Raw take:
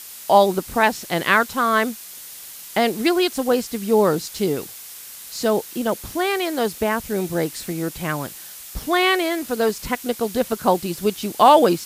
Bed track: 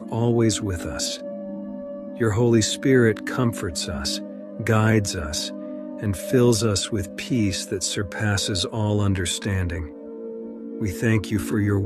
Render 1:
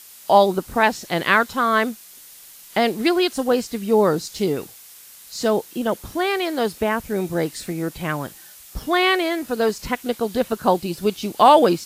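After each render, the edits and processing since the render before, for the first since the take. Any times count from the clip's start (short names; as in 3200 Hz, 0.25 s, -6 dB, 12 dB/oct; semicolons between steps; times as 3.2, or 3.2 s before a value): noise print and reduce 6 dB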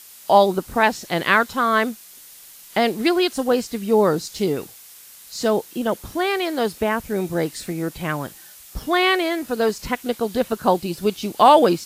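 nothing audible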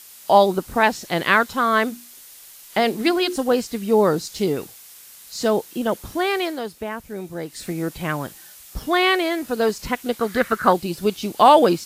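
1.88–3.36 notches 60/120/180/240/300/360/420 Hz; 6.44–7.66 dip -8 dB, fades 0.18 s; 10.2–10.73 band shelf 1600 Hz +13 dB 1.1 oct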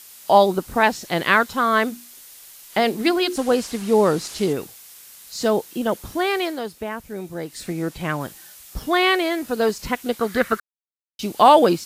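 3.37–4.53 delta modulation 64 kbps, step -29.5 dBFS; 7.63–8.21 high shelf 12000 Hz -8 dB; 10.6–11.19 mute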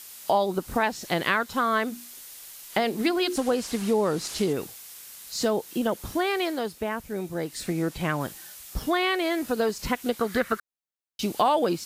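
compressor 3:1, threshold -22 dBFS, peak gain reduction 11 dB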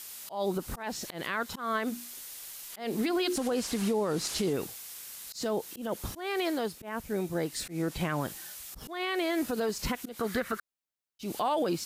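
limiter -21 dBFS, peak gain reduction 12 dB; auto swell 0.159 s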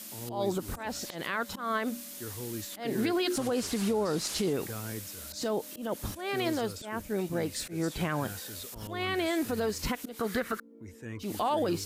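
add bed track -21 dB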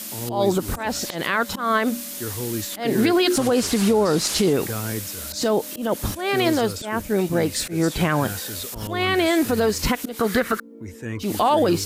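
gain +10.5 dB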